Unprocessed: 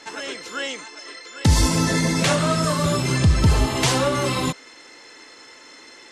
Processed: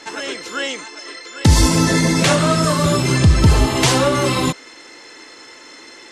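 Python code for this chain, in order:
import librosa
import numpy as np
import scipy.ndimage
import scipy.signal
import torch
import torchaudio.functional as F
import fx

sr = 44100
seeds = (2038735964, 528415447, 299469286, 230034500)

y = fx.peak_eq(x, sr, hz=340.0, db=3.5, octaves=0.33)
y = y * librosa.db_to_amplitude(4.5)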